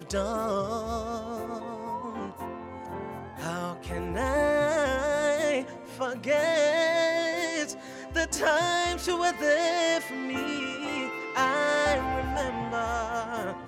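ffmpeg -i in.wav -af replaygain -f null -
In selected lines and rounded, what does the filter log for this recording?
track_gain = +8.4 dB
track_peak = 0.160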